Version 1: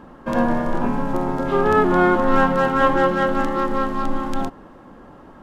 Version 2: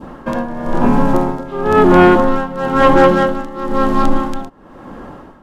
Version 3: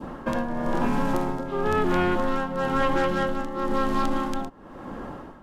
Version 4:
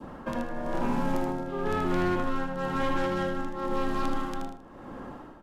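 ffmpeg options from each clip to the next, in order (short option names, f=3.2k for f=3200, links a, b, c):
-af "adynamicequalizer=threshold=0.0282:dfrequency=1700:dqfactor=0.88:tfrequency=1700:tqfactor=0.88:attack=5:release=100:ratio=0.375:range=2:mode=cutabove:tftype=bell,tremolo=f=1:d=0.86,aeval=exprs='0.531*sin(PI/2*1.58*val(0)/0.531)':c=same,volume=3.5dB"
-filter_complex "[0:a]acrossover=split=120|1600[a][b][c];[a]acompressor=threshold=-23dB:ratio=4[d];[b]acompressor=threshold=-21dB:ratio=4[e];[c]acompressor=threshold=-28dB:ratio=4[f];[d][e][f]amix=inputs=3:normalize=0,volume=-3.5dB"
-filter_complex "[0:a]aecho=1:1:78|156|234|312:0.531|0.154|0.0446|0.0129,acrossover=split=230|4200[a][b][c];[b]volume=18.5dB,asoftclip=hard,volume=-18.5dB[d];[a][d][c]amix=inputs=3:normalize=0,volume=-6dB"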